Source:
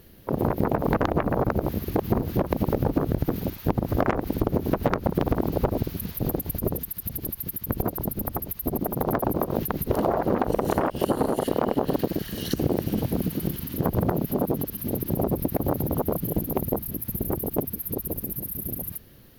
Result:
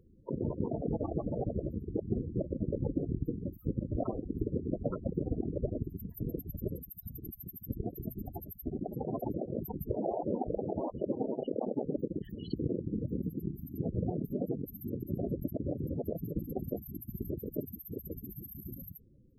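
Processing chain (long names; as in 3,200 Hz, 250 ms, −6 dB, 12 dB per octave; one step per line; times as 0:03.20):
spectral peaks only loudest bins 16
0:14.03–0:15.58: one half of a high-frequency compander encoder only
level −8.5 dB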